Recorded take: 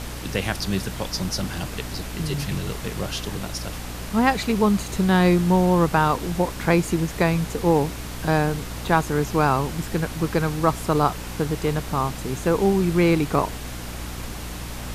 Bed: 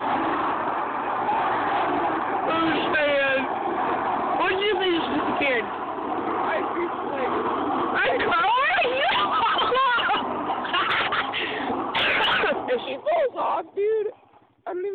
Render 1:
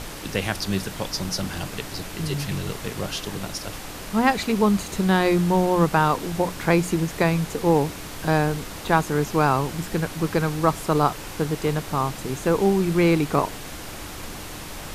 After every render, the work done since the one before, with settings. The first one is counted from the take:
mains-hum notches 60/120/180/240 Hz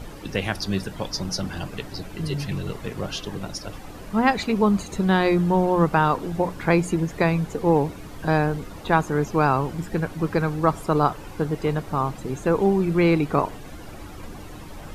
broadband denoise 12 dB, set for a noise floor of −36 dBFS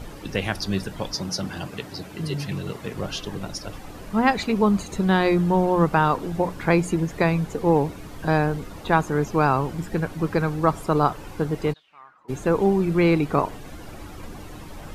0:01.14–0:02.94: high-pass filter 99 Hz
0:11.72–0:12.28: resonant band-pass 4,500 Hz → 900 Hz, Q 10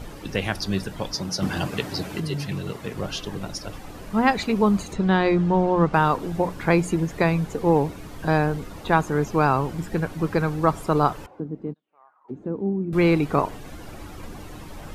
0:01.42–0:02.20: clip gain +6 dB
0:04.93–0:05.94: high-frequency loss of the air 88 metres
0:11.26–0:12.93: envelope filter 240–1,100 Hz, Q 2.3, down, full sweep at −26 dBFS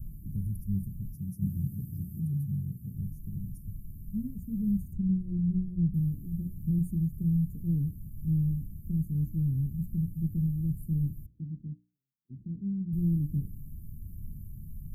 inverse Chebyshev band-stop filter 670–4,300 Hz, stop band 70 dB
mains-hum notches 60/120/180/240/300/360/420/480/540 Hz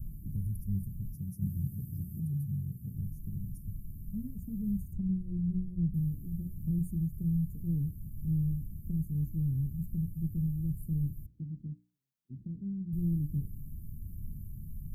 dynamic equaliser 230 Hz, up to −5 dB, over −40 dBFS, Q 1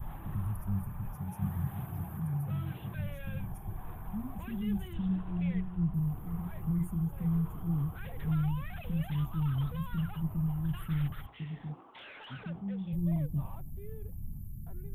mix in bed −28 dB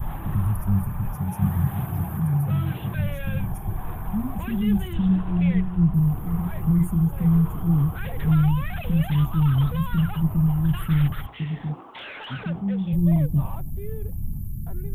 level +11.5 dB

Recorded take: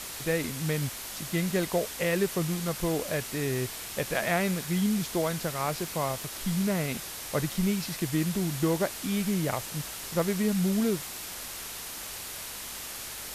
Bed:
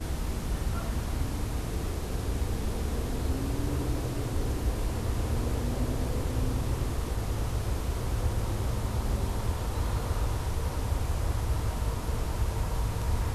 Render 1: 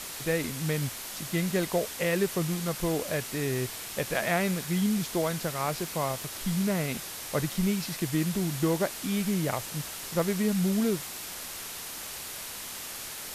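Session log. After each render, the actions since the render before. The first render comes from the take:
hum removal 50 Hz, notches 2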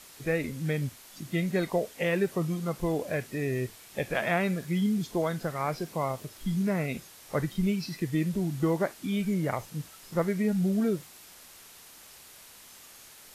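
noise reduction from a noise print 12 dB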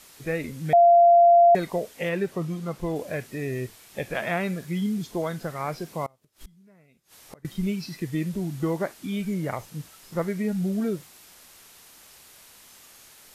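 0:00.73–0:01.55: beep over 690 Hz −11.5 dBFS
0:02.09–0:02.96: high-shelf EQ 6,500 Hz −6.5 dB
0:06.06–0:07.45: gate with flip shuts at −32 dBFS, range −28 dB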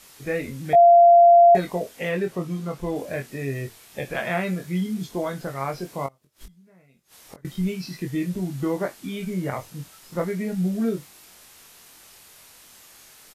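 double-tracking delay 22 ms −4.5 dB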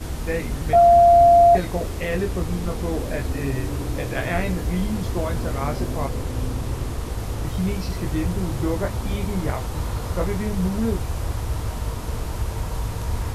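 mix in bed +3 dB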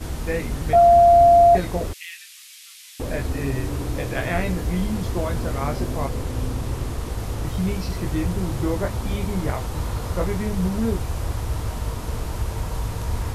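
0:01.93–0:03.00: inverse Chebyshev high-pass filter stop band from 530 Hz, stop band 70 dB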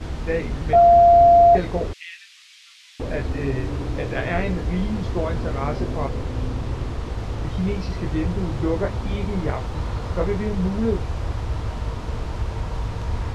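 low-pass filter 4,500 Hz 12 dB per octave
dynamic equaliser 430 Hz, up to +5 dB, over −34 dBFS, Q 3.2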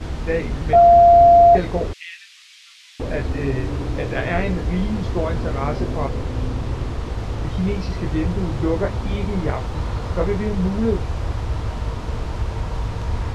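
level +2 dB

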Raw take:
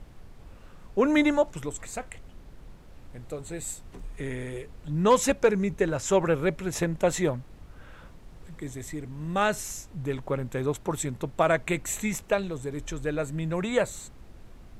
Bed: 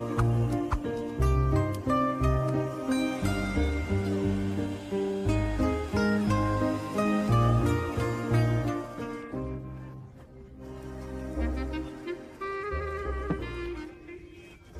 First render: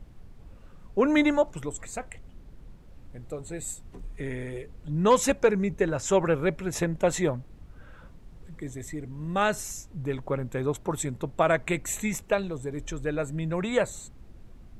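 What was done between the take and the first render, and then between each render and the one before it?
broadband denoise 6 dB, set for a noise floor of −49 dBFS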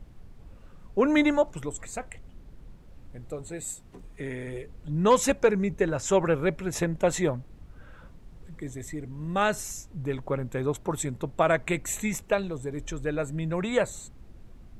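0:03.48–0:04.47: low-shelf EQ 80 Hz −9.5 dB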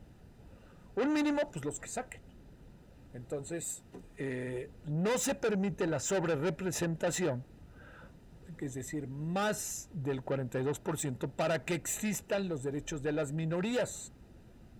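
soft clipping −27 dBFS, distortion −6 dB
notch comb filter 1,100 Hz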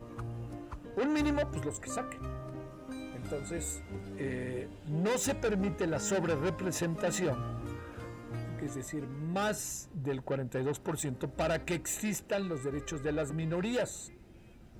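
mix in bed −15 dB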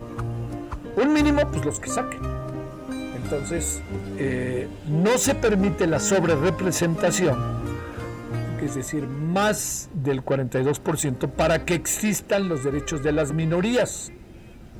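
level +11 dB

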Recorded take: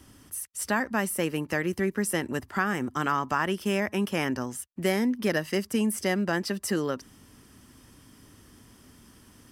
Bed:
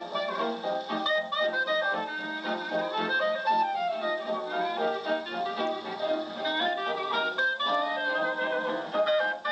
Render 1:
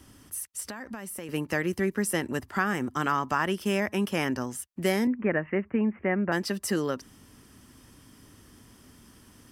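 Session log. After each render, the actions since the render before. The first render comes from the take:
0:00.60–0:01.29: downward compressor 8 to 1, threshold −34 dBFS
0:05.07–0:06.32: Butterworth low-pass 2,500 Hz 72 dB per octave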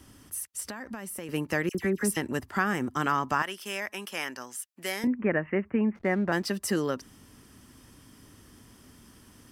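0:01.69–0:02.17: all-pass dispersion lows, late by 56 ms, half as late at 2,000 Hz
0:03.42–0:05.04: high-pass filter 1,400 Hz 6 dB per octave
0:05.95–0:06.47: slack as between gear wheels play −46 dBFS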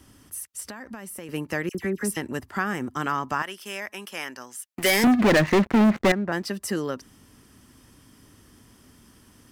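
0:04.75–0:06.12: leveller curve on the samples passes 5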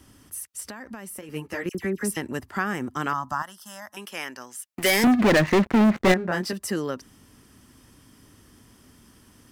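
0:01.21–0:01.66: string-ensemble chorus
0:03.13–0:03.97: phaser with its sweep stopped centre 1,000 Hz, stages 4
0:06.05–0:06.53: double-tracking delay 22 ms −3.5 dB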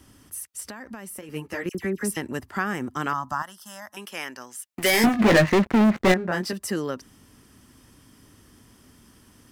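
0:04.92–0:05.49: double-tracking delay 18 ms −5 dB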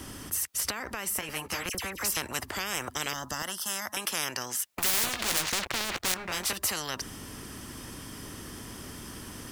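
every bin compressed towards the loudest bin 10 to 1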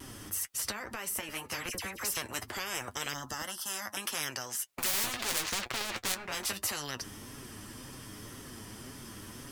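pitch vibrato 1 Hz 26 cents
flanger 1.9 Hz, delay 7 ms, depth 3.1 ms, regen +38%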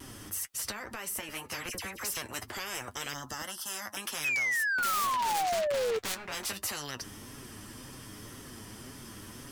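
0:04.24–0:05.99: sound drawn into the spectrogram fall 430–2,600 Hz −27 dBFS
soft clipping −25 dBFS, distortion −15 dB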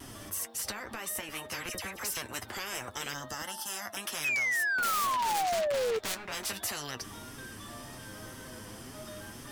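mix in bed −22.5 dB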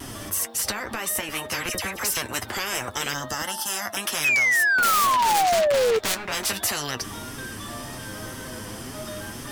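level +9.5 dB

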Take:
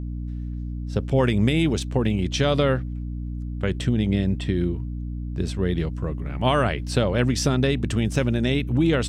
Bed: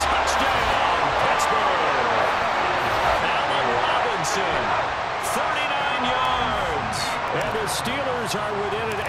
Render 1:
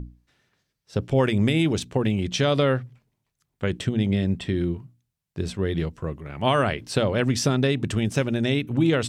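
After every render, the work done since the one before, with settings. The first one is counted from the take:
mains-hum notches 60/120/180/240/300 Hz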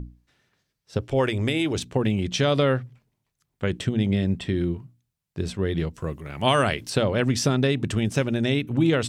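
0:00.98–0:01.76: parametric band 180 Hz −15 dB 0.55 octaves
0:05.94–0:06.90: high-shelf EQ 4,100 Hz +11.5 dB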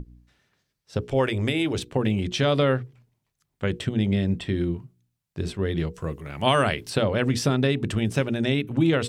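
mains-hum notches 60/120/180/240/300/360/420/480 Hz
dynamic equaliser 6,400 Hz, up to −5 dB, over −47 dBFS, Q 1.8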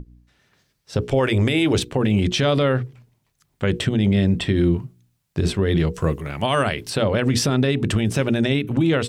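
automatic gain control gain up to 11 dB
brickwall limiter −10.5 dBFS, peak gain reduction 9 dB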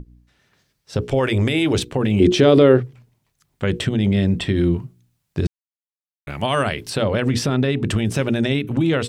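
0:02.20–0:02.80: parametric band 360 Hz +15 dB 0.92 octaves
0:05.47–0:06.27: silence
0:07.30–0:07.86: bass and treble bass 0 dB, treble −5 dB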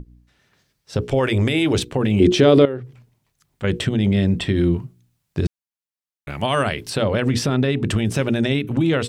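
0:02.65–0:03.64: downward compressor 2.5 to 1, threshold −30 dBFS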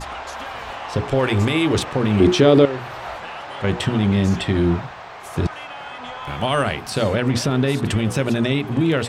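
mix in bed −11 dB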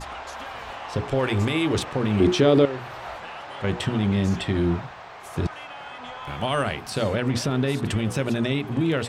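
level −4.5 dB

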